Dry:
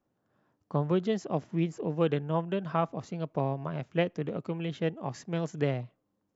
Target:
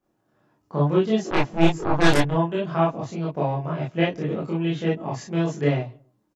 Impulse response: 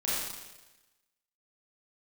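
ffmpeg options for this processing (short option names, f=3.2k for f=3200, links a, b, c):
-filter_complex "[0:a]asplit=2[a][b];[b]adelay=139,lowpass=f=830:p=1,volume=-24dB,asplit=2[c][d];[d]adelay=139,lowpass=f=830:p=1,volume=0.33[e];[a][c][e]amix=inputs=3:normalize=0,asplit=3[f][g][h];[f]afade=t=out:st=1.3:d=0.02[i];[g]aeval=exprs='0.188*(cos(1*acos(clip(val(0)/0.188,-1,1)))-cos(1*PI/2))+0.0531*(cos(6*acos(clip(val(0)/0.188,-1,1)))-cos(6*PI/2))+0.0596*(cos(7*acos(clip(val(0)/0.188,-1,1)))-cos(7*PI/2))+0.0188*(cos(8*acos(clip(val(0)/0.188,-1,1)))-cos(8*PI/2))':c=same,afade=t=in:st=1.3:d=0.02,afade=t=out:st=2.29:d=0.02[j];[h]afade=t=in:st=2.29:d=0.02[k];[i][j][k]amix=inputs=3:normalize=0[l];[1:a]atrim=start_sample=2205,atrim=end_sample=4410,asetrate=66150,aresample=44100[m];[l][m]afir=irnorm=-1:irlink=0,volume=4.5dB"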